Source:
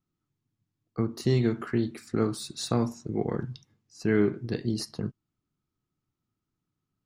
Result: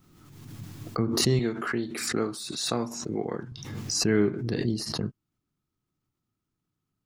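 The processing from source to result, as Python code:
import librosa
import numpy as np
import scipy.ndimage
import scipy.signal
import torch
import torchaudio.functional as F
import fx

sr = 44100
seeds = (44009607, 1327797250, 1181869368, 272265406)

y = fx.highpass(x, sr, hz=330.0, slope=6, at=(1.39, 3.52))
y = fx.pre_swell(y, sr, db_per_s=38.0)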